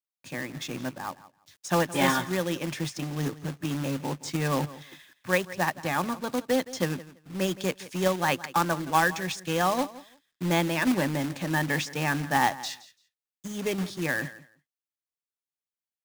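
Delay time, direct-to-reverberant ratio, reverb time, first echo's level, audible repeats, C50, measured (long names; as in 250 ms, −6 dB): 169 ms, no reverb audible, no reverb audible, −17.5 dB, 2, no reverb audible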